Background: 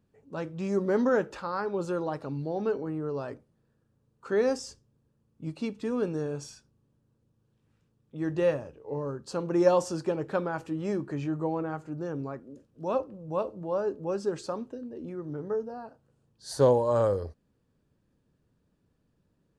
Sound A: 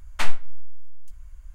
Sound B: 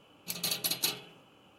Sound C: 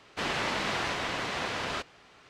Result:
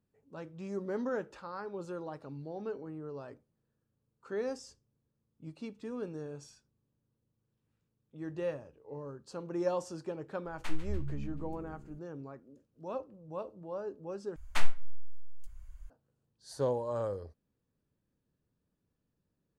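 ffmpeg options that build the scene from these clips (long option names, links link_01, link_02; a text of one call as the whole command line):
ffmpeg -i bed.wav -i cue0.wav -filter_complex "[1:a]asplit=2[link_01][link_02];[0:a]volume=-10dB[link_03];[link_01]asplit=7[link_04][link_05][link_06][link_07][link_08][link_09][link_10];[link_05]adelay=145,afreqshift=69,volume=-13.5dB[link_11];[link_06]adelay=290,afreqshift=138,volume=-18.2dB[link_12];[link_07]adelay=435,afreqshift=207,volume=-23dB[link_13];[link_08]adelay=580,afreqshift=276,volume=-27.7dB[link_14];[link_09]adelay=725,afreqshift=345,volume=-32.4dB[link_15];[link_10]adelay=870,afreqshift=414,volume=-37.2dB[link_16];[link_04][link_11][link_12][link_13][link_14][link_15][link_16]amix=inputs=7:normalize=0[link_17];[link_03]asplit=2[link_18][link_19];[link_18]atrim=end=14.364[link_20];[link_02]atrim=end=1.54,asetpts=PTS-STARTPTS,volume=-6.5dB[link_21];[link_19]atrim=start=15.896[link_22];[link_17]atrim=end=1.54,asetpts=PTS-STARTPTS,volume=-15.5dB,afade=type=in:duration=0.004:curve=hsin,afade=type=out:start_time=1.536:duration=0.004:curve=hsin,adelay=10450[link_23];[link_20][link_21]acrossfade=duration=0.004:curve1=hsin:curve2=hsin[link_24];[link_24][link_22]acrossfade=duration=0.004:curve1=hsin:curve2=hsin[link_25];[link_25][link_23]amix=inputs=2:normalize=0" out.wav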